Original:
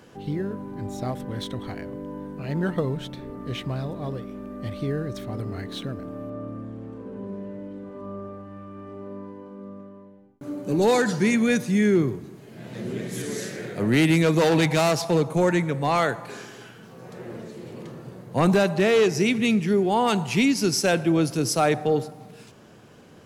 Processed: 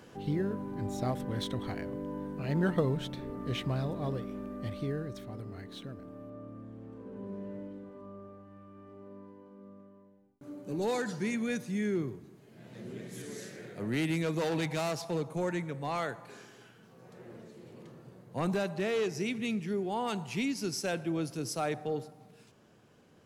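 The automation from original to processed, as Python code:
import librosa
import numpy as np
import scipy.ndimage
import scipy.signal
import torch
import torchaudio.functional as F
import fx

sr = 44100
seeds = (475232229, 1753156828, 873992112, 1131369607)

y = fx.gain(x, sr, db=fx.line((4.38, -3.0), (5.42, -11.5), (6.5, -11.5), (7.57, -5.0), (8.12, -12.0)))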